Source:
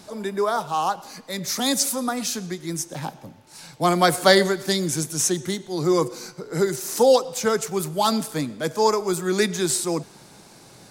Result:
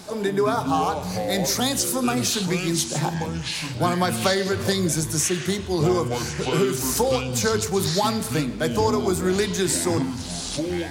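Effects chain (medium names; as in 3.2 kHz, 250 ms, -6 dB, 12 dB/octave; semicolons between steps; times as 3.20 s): 1.04–2.74 s: band noise 3.4–14 kHz -56 dBFS; compression 6:1, threshold -25 dBFS, peak gain reduction 14 dB; on a send at -9 dB: reverberation RT60 0.45 s, pre-delay 3 ms; on the sum: ever faster or slower copies 95 ms, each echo -7 st, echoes 3, each echo -6 dB; trim +5 dB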